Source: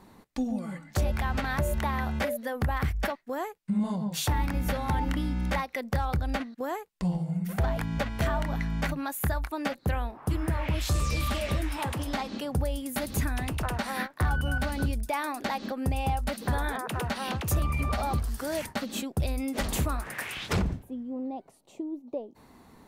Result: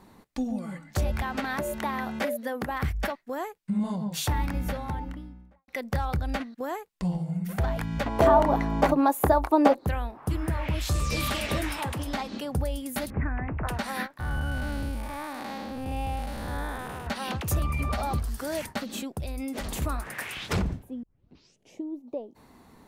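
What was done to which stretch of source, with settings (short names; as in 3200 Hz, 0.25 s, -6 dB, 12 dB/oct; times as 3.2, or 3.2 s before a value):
1.22–2.82 resonant low shelf 160 Hz -14 dB, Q 1.5
4.35–5.68 studio fade out
8.06–9.86 band shelf 550 Hz +14 dB 2.4 oct
11.1–11.79 spectral limiter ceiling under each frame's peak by 12 dB
13.1–13.67 steep low-pass 2200 Hz 48 dB/oct
14.19–17.07 time blur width 0.263 s
18.78–19.82 compressor, threshold -29 dBFS
21.03 tape start 0.80 s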